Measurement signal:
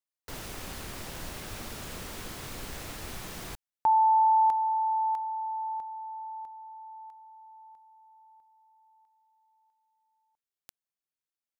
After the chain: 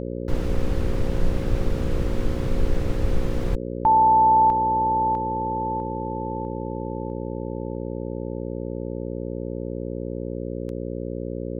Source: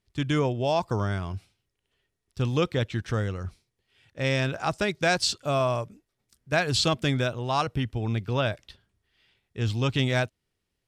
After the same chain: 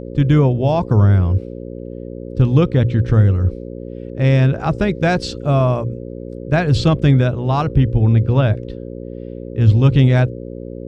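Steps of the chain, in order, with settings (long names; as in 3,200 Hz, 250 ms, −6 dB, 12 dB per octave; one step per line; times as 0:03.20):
RIAA equalisation playback
mains-hum notches 60/120 Hz
hum with harmonics 60 Hz, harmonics 9, −35 dBFS 0 dB per octave
level +5 dB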